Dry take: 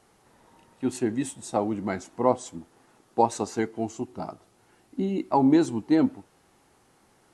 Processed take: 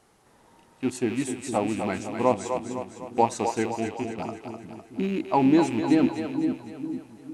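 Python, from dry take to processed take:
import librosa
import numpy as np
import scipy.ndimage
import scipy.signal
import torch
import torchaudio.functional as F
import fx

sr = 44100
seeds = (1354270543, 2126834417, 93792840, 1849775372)

y = fx.rattle_buzz(x, sr, strikes_db=-36.0, level_db=-29.0)
y = fx.steep_lowpass(y, sr, hz=3400.0, slope=72, at=(3.77, 4.18))
y = fx.echo_split(y, sr, split_hz=350.0, low_ms=456, high_ms=253, feedback_pct=52, wet_db=-6.5)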